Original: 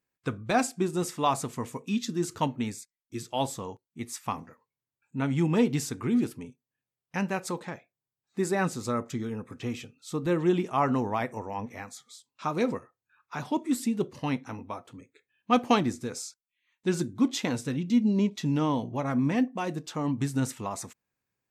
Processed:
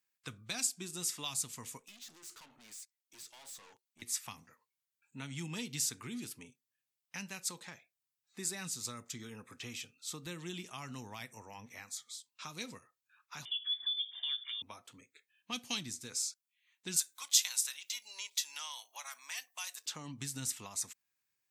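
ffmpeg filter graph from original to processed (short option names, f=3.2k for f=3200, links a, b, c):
-filter_complex "[0:a]asettb=1/sr,asplit=3[a][b][c];[a]atrim=end=1.794[d];[b]atrim=start=1.79:end=4.02,asetpts=PTS-STARTPTS,afade=t=in:d=0.004:c=qsin,afade=t=out:st=2.226:d=0.004:c=qsin,highpass=f=390:p=1,acompressor=threshold=-35dB:ratio=6:attack=3.2:release=140:knee=1:detection=peak,aeval=exprs='(tanh(282*val(0)+0.25)-tanh(0.25))/282':c=same[e];[c]atrim=start=4.016[f];[d][e]acrossfade=d=0.004:c1=hsin:c2=qsin[g];[g][f]acrossfade=d=0.004:c1=qsin:c2=hsin,asettb=1/sr,asplit=3[h][i][j];[h]atrim=end=13.454[k];[i]atrim=start=13.45:end=14.62,asetpts=PTS-STARTPTS,afade=t=in:d=0.004:c=qsin,afade=t=out:st=1.166:d=0.004:c=qsin,lowpass=f=3.1k:t=q:w=0.5098,lowpass=f=3.1k:t=q:w=0.6013,lowpass=f=3.1k:t=q:w=0.9,lowpass=f=3.1k:t=q:w=2.563,afreqshift=-3700,acompressor=threshold=-37dB:ratio=2:attack=3.2:release=140:knee=1:detection=peak,asuperstop=centerf=2600:order=12:qfactor=7.7[l];[j]atrim=start=14.616[m];[k][l]acrossfade=d=0.004:c1=hsin:c2=qsin[n];[n][m]acrossfade=d=0.004:c1=qsin:c2=hsin,asettb=1/sr,asplit=3[o][p][q];[o]atrim=end=16.964[r];[p]atrim=start=16.96:end=19.86,asetpts=PTS-STARTPTS,afade=t=in:d=0.004:c=qsin,afade=t=out:st=2.896:d=0.004:c=qsin,highpass=f=820:w=0.5412,highpass=f=820:w=1.3066,aemphasis=mode=production:type=50kf[s];[q]atrim=start=19.856[t];[r][s]acrossfade=d=0.004:c1=hsin:c2=qsin[u];[u][t]acrossfade=d=0.004:c1=qsin:c2=hsin,tiltshelf=f=1.1k:g=-9,acrossover=split=210|3000[v][w][x];[w]acompressor=threshold=-43dB:ratio=5[y];[v][y][x]amix=inputs=3:normalize=0,volume=-5.5dB"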